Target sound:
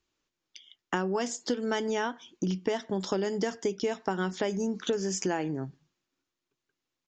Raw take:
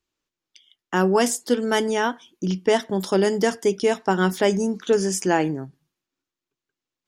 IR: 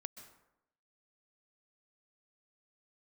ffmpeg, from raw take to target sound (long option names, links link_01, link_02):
-af "aresample=16000,aresample=44100,acompressor=threshold=-29dB:ratio=6,volume=2dB"